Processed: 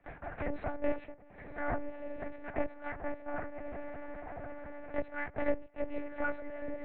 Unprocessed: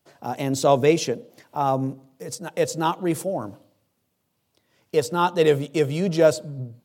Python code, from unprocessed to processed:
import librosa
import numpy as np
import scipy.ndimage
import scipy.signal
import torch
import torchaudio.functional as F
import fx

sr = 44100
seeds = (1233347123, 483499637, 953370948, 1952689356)

y = fx.lower_of_two(x, sr, delay_ms=7.3)
y = fx.low_shelf(y, sr, hz=160.0, db=-3.0)
y = fx.small_body(y, sr, hz=(470.0, 1300.0, 1900.0), ring_ms=50, db=9)
y = y * np.sin(2.0 * np.pi * 160.0 * np.arange(len(y)) / sr)
y = fx.fixed_phaser(y, sr, hz=700.0, stages=8)
y = fx.tremolo_shape(y, sr, shape='triangle', hz=2.4, depth_pct=90)
y = fx.echo_diffused(y, sr, ms=1092, feedback_pct=41, wet_db=-14.5)
y = fx.lpc_monotone(y, sr, seeds[0], pitch_hz=290.0, order=8)
y = fx.band_squash(y, sr, depth_pct=70)
y = F.gain(torch.from_numpy(y), -3.0).numpy()